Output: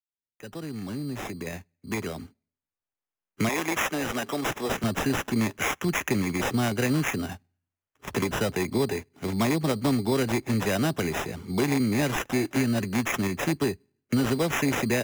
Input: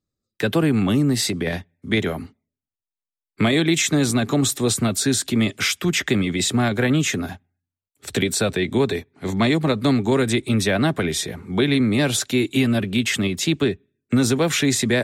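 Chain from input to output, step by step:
fade in at the beginning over 3.92 s
0:03.49–0:04.84: meter weighting curve A
in parallel at +0.5 dB: downward compressor, threshold −28 dBFS, peak gain reduction 13.5 dB
on the sum: decimation without filtering 10×
level −8 dB

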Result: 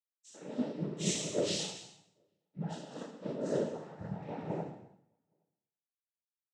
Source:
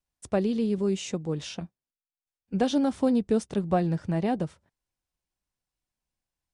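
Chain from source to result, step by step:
peak hold with a decay on every bin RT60 0.93 s
mains-hum notches 50/100/150/200/250 Hz
compressor whose output falls as the input rises −28 dBFS, ratio −1
resonators tuned to a chord D3 major, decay 0.67 s
cochlear-implant simulation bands 12
slap from a distant wall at 140 metres, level −21 dB
reverb whose tail is shaped and stops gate 360 ms flat, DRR 8 dB
multiband upward and downward expander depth 100%
level +8.5 dB

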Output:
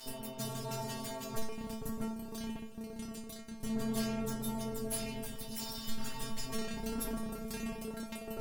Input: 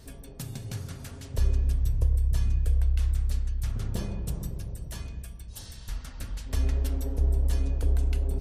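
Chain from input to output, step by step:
phases set to zero 130 Hz
fuzz pedal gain 42 dB, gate −47 dBFS
stiff-string resonator 220 Hz, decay 0.51 s, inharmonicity 0.002
feedback delay with all-pass diffusion 606 ms, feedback 55%, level −15.5 dB
level +2.5 dB

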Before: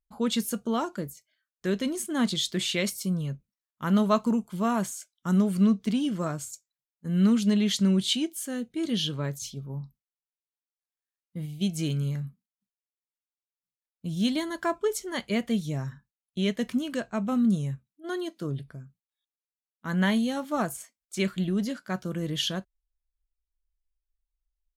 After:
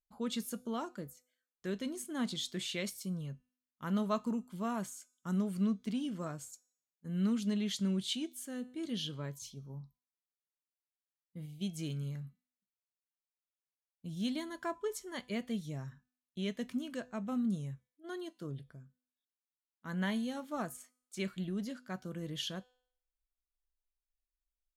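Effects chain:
tuned comb filter 250 Hz, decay 0.63 s, harmonics all, mix 40%
level −6 dB

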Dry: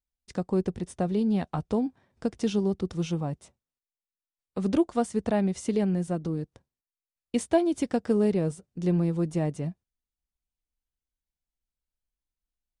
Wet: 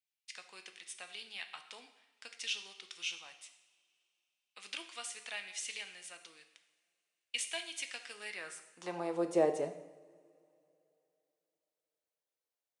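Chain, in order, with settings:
high-pass filter sweep 2,500 Hz → 490 Hz, 0:08.14–0:09.35
coupled-rooms reverb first 0.81 s, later 3.1 s, from −21 dB, DRR 6.5 dB
level −1.5 dB

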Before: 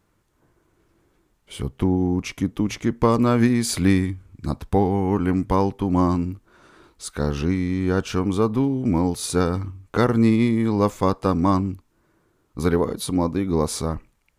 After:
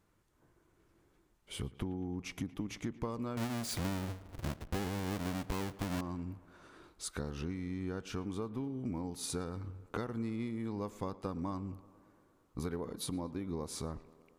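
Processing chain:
0:03.37–0:06.01: each half-wave held at its own peak
downward compressor 6 to 1, threshold −29 dBFS, peak gain reduction 19 dB
tape delay 115 ms, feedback 79%, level −18.5 dB, low-pass 3,000 Hz
level −6.5 dB

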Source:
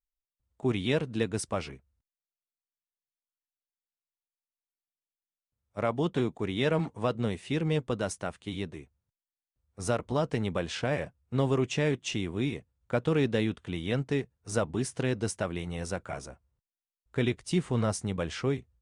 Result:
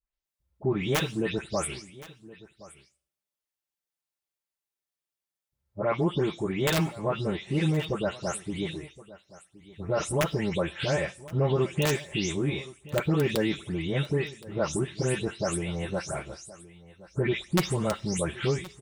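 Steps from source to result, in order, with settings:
every frequency bin delayed by itself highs late, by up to 236 ms
in parallel at −1.5 dB: brickwall limiter −24 dBFS, peak gain reduction 9.5 dB
on the sum: wrap-around overflow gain 14.5 dB
notch comb filter 240 Hz
on a send: single-tap delay 1,070 ms −19.5 dB
on the sum: coupled-rooms reverb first 0.54 s, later 1.7 s, from −24 dB, DRR 19.5 dB

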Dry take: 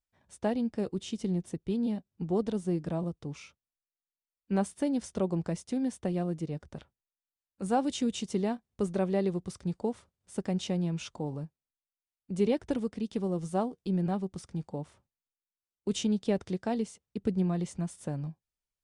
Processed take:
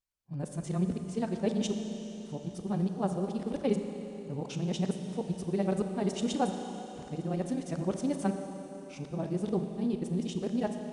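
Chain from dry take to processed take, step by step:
played backwards from end to start
time stretch by overlap-add 0.58×, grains 59 ms
four-comb reverb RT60 3.6 s, combs from 29 ms, DRR 5.5 dB

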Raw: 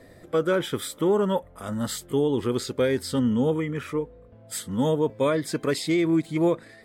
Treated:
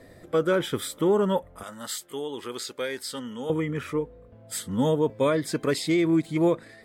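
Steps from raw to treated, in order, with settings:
0:01.63–0:03.50: high-pass filter 1,200 Hz 6 dB per octave

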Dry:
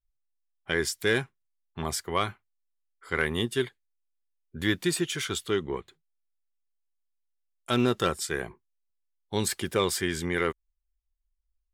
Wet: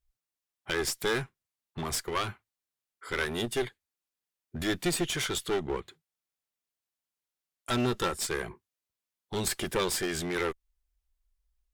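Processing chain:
in parallel at 0 dB: downward compressor, threshold −32 dBFS, peak gain reduction 12.5 dB
on the sum: asymmetric clip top −30.5 dBFS
level −1.5 dB

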